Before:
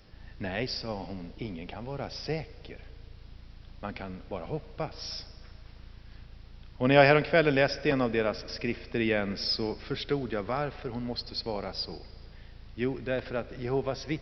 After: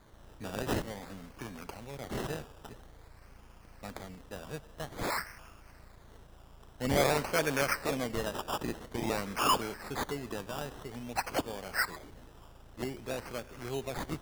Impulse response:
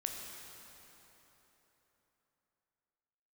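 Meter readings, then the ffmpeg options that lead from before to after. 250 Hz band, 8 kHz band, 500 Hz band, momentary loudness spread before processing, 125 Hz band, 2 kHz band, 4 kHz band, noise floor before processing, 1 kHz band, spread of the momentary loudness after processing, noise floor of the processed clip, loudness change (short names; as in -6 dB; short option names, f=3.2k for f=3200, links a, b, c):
-6.0 dB, n/a, -7.0 dB, 17 LU, -6.0 dB, -4.5 dB, -4.5 dB, -50 dBFS, -0.5 dB, 18 LU, -55 dBFS, -4.5 dB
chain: -af "aexciter=amount=2.7:drive=8.5:freq=2.3k,acrusher=samples=16:mix=1:aa=0.000001:lfo=1:lforange=9.6:lforate=0.5,asoftclip=type=tanh:threshold=-9dB,volume=-7.5dB"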